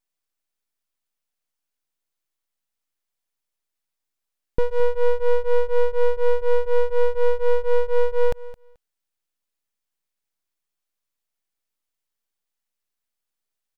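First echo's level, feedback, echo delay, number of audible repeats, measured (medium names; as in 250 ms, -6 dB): -18.0 dB, 17%, 217 ms, 2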